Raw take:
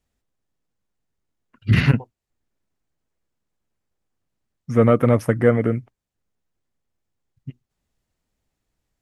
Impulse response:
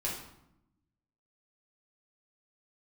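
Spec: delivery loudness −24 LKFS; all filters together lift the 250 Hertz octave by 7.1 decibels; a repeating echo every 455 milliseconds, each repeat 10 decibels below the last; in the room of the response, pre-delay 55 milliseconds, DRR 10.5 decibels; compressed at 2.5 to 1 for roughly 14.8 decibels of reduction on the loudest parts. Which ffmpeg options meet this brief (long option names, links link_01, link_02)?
-filter_complex "[0:a]equalizer=frequency=250:width_type=o:gain=8,acompressor=threshold=-30dB:ratio=2.5,aecho=1:1:455|910|1365|1820:0.316|0.101|0.0324|0.0104,asplit=2[link_01][link_02];[1:a]atrim=start_sample=2205,adelay=55[link_03];[link_02][link_03]afir=irnorm=-1:irlink=0,volume=-14.5dB[link_04];[link_01][link_04]amix=inputs=2:normalize=0,volume=6.5dB"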